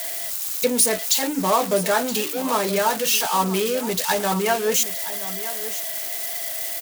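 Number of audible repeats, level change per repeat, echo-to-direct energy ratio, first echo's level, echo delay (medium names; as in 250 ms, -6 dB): 1, no regular repeats, -14.0 dB, -14.0 dB, 972 ms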